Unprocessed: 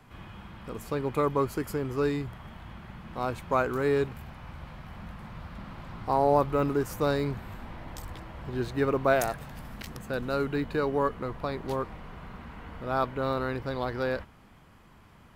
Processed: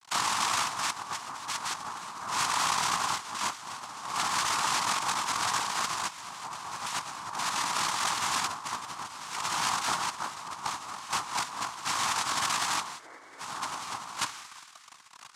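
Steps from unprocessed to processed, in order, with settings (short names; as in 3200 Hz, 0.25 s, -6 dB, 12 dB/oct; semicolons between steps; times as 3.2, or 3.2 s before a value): fuzz box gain 44 dB, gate -49 dBFS; narrowing echo 0.23 s, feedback 53%, band-pass 2200 Hz, level -21 dB; noise vocoder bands 2; resonant low shelf 750 Hz -12.5 dB, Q 3; painted sound noise, 12.99–13.4, 270–2300 Hz -13 dBFS; reverb, pre-delay 3 ms, DRR 17 dB; negative-ratio compressor -23 dBFS, ratio -0.5; gain -9 dB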